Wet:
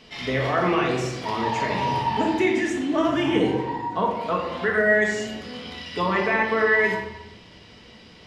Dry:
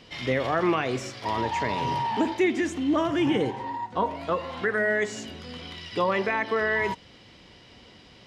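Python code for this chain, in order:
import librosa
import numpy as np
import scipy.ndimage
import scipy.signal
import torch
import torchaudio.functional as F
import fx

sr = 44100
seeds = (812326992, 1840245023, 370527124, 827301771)

y = fx.low_shelf(x, sr, hz=210.0, db=-4.0)
y = fx.room_shoebox(y, sr, seeds[0], volume_m3=430.0, walls='mixed', distance_m=1.5)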